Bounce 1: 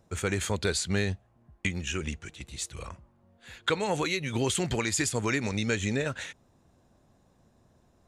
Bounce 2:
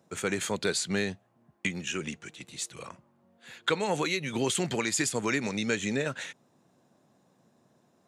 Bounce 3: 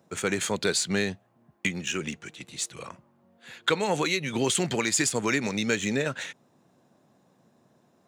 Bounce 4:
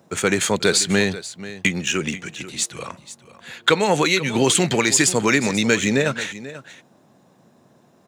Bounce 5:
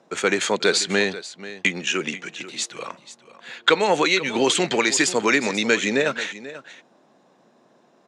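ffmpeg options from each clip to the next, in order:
ffmpeg -i in.wav -af "highpass=frequency=140:width=0.5412,highpass=frequency=140:width=1.3066" out.wav
ffmpeg -i in.wav -filter_complex "[0:a]highshelf=frequency=6900:gain=8.5,asplit=2[link_01][link_02];[link_02]adynamicsmooth=sensitivity=8:basefreq=5700,volume=2dB[link_03];[link_01][link_03]amix=inputs=2:normalize=0,volume=-4.5dB" out.wav
ffmpeg -i in.wav -af "aecho=1:1:488:0.168,volume=8dB" out.wav
ffmpeg -i in.wav -af "highpass=280,lowpass=5900" out.wav

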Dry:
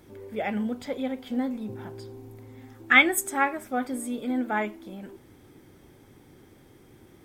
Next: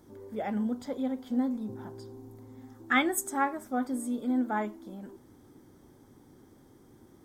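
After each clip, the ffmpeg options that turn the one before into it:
ffmpeg -i in.wav -af "equalizer=frequency=250:width_type=o:width=0.67:gain=5,equalizer=frequency=1000:width_type=o:width=0.67:gain=4,equalizer=frequency=2500:width_type=o:width=0.67:gain=-11,equalizer=frequency=6300:width_type=o:width=0.67:gain=3,volume=-5dB" out.wav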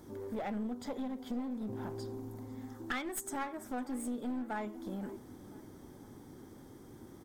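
ffmpeg -i in.wav -filter_complex "[0:a]acompressor=threshold=-38dB:ratio=6,aeval=exprs='clip(val(0),-1,0.00841)':channel_layout=same,asplit=2[link_01][link_02];[link_02]adelay=506,lowpass=frequency=3400:poles=1,volume=-19dB,asplit=2[link_03][link_04];[link_04]adelay=506,lowpass=frequency=3400:poles=1,volume=0.5,asplit=2[link_05][link_06];[link_06]adelay=506,lowpass=frequency=3400:poles=1,volume=0.5,asplit=2[link_07][link_08];[link_08]adelay=506,lowpass=frequency=3400:poles=1,volume=0.5[link_09];[link_01][link_03][link_05][link_07][link_09]amix=inputs=5:normalize=0,volume=4dB" out.wav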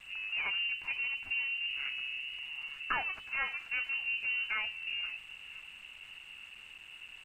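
ffmpeg -i in.wav -af "lowpass=frequency=2600:width_type=q:width=0.5098,lowpass=frequency=2600:width_type=q:width=0.6013,lowpass=frequency=2600:width_type=q:width=0.9,lowpass=frequency=2600:width_type=q:width=2.563,afreqshift=-3000,aeval=exprs='val(0)*gte(abs(val(0)),0.00178)':channel_layout=same,aemphasis=mode=reproduction:type=bsi,volume=5dB" out.wav

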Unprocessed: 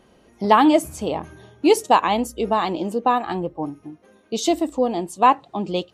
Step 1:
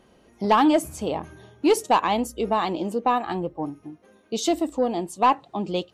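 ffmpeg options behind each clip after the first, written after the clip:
ffmpeg -i in.wav -af "asoftclip=type=tanh:threshold=-7.5dB,volume=-2dB" out.wav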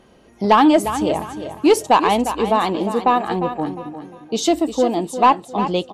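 ffmpeg -i in.wav -af "highshelf=frequency=10000:gain=-3.5,aecho=1:1:353|706|1059:0.299|0.0925|0.0287,volume=5.5dB" out.wav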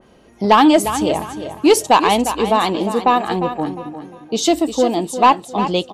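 ffmpeg -i in.wav -af "adynamicequalizer=threshold=0.0398:dfrequency=2400:dqfactor=0.7:tfrequency=2400:tqfactor=0.7:attack=5:release=100:ratio=0.375:range=2.5:mode=boostabove:tftype=highshelf,volume=1.5dB" out.wav

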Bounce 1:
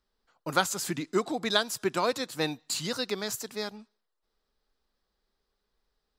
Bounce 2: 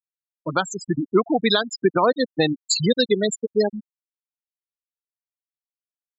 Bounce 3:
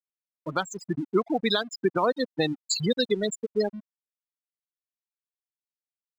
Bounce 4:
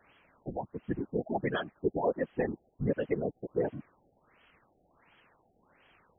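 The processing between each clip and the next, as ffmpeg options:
ffmpeg -i in.wav -af "afftfilt=real='re*gte(hypot(re,im),0.0708)':imag='im*gte(hypot(re,im),0.0708)':win_size=1024:overlap=0.75,dynaudnorm=framelen=400:gausssize=7:maxgain=9.5dB,alimiter=limit=-15.5dB:level=0:latency=1:release=190,volume=8dB" out.wav
ffmpeg -i in.wav -af "aeval=exprs='sgn(val(0))*max(abs(val(0))-0.00422,0)':channel_layout=same,volume=-5.5dB" out.wav
ffmpeg -i in.wav -af "aeval=exprs='val(0)+0.5*0.0141*sgn(val(0))':channel_layout=same,afftfilt=real='hypot(re,im)*cos(2*PI*random(0))':imag='hypot(re,im)*sin(2*PI*random(1))':win_size=512:overlap=0.75,afftfilt=real='re*lt(b*sr/1024,800*pow(3400/800,0.5+0.5*sin(2*PI*1.4*pts/sr)))':imag='im*lt(b*sr/1024,800*pow(3400/800,0.5+0.5*sin(2*PI*1.4*pts/sr)))':win_size=1024:overlap=0.75" out.wav

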